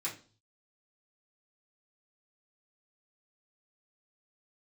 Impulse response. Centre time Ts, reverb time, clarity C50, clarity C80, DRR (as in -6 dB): 20 ms, 0.40 s, 11.0 dB, 16.5 dB, -8.0 dB